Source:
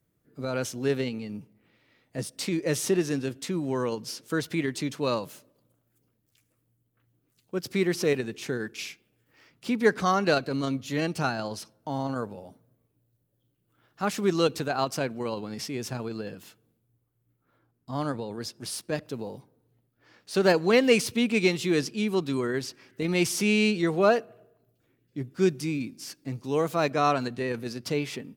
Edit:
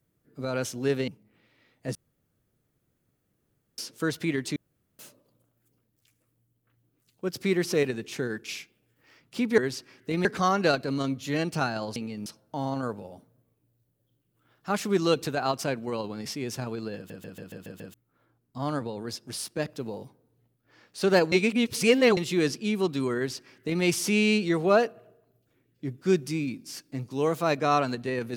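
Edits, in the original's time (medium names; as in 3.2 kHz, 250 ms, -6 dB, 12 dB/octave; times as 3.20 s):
1.08–1.38 s: move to 11.59 s
2.25–4.08 s: room tone
4.86–5.29 s: room tone
16.29 s: stutter in place 0.14 s, 7 plays
20.65–21.50 s: reverse
22.49–23.16 s: copy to 9.88 s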